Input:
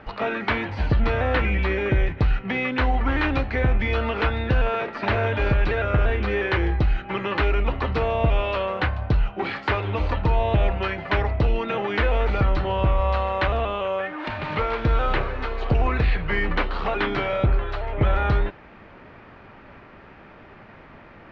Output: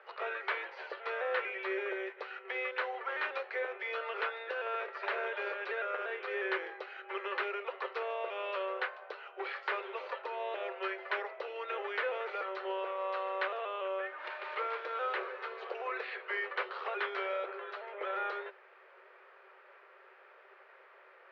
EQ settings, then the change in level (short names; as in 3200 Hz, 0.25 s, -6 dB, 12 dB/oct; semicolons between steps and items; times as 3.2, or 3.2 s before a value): rippled Chebyshev high-pass 370 Hz, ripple 6 dB; air absorption 110 m; high shelf 3700 Hz +6.5 dB; -8.0 dB